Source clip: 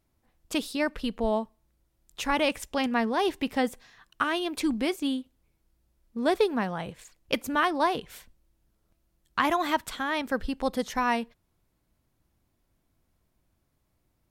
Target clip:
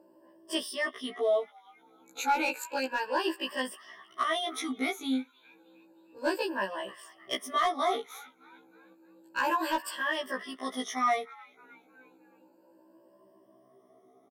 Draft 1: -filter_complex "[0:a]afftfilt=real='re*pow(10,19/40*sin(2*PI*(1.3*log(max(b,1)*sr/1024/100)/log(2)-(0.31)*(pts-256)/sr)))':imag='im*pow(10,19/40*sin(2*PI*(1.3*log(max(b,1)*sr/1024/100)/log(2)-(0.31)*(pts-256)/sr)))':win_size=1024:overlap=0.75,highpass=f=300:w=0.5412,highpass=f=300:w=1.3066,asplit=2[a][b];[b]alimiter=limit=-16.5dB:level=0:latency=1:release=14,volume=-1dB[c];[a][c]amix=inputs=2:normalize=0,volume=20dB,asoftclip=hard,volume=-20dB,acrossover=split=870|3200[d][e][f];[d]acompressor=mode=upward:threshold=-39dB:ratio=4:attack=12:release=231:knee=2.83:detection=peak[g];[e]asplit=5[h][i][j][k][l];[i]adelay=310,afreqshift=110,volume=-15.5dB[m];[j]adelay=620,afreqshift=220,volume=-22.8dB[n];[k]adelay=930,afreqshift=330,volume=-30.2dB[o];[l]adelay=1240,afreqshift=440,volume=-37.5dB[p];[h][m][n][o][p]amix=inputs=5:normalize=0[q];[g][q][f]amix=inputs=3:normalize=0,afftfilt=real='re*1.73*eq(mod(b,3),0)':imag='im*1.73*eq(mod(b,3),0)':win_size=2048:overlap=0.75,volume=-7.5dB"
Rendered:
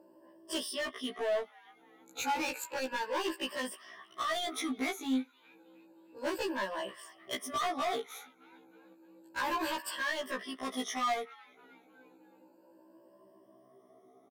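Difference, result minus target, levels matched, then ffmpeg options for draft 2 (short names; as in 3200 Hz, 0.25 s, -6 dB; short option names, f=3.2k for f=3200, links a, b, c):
overloaded stage: distortion +16 dB
-filter_complex "[0:a]afftfilt=real='re*pow(10,19/40*sin(2*PI*(1.3*log(max(b,1)*sr/1024/100)/log(2)-(0.31)*(pts-256)/sr)))':imag='im*pow(10,19/40*sin(2*PI*(1.3*log(max(b,1)*sr/1024/100)/log(2)-(0.31)*(pts-256)/sr)))':win_size=1024:overlap=0.75,highpass=f=300:w=0.5412,highpass=f=300:w=1.3066,asplit=2[a][b];[b]alimiter=limit=-16.5dB:level=0:latency=1:release=14,volume=-1dB[c];[a][c]amix=inputs=2:normalize=0,volume=9.5dB,asoftclip=hard,volume=-9.5dB,acrossover=split=870|3200[d][e][f];[d]acompressor=mode=upward:threshold=-39dB:ratio=4:attack=12:release=231:knee=2.83:detection=peak[g];[e]asplit=5[h][i][j][k][l];[i]adelay=310,afreqshift=110,volume=-15.5dB[m];[j]adelay=620,afreqshift=220,volume=-22.8dB[n];[k]adelay=930,afreqshift=330,volume=-30.2dB[o];[l]adelay=1240,afreqshift=440,volume=-37.5dB[p];[h][m][n][o][p]amix=inputs=5:normalize=0[q];[g][q][f]amix=inputs=3:normalize=0,afftfilt=real='re*1.73*eq(mod(b,3),0)':imag='im*1.73*eq(mod(b,3),0)':win_size=2048:overlap=0.75,volume=-7.5dB"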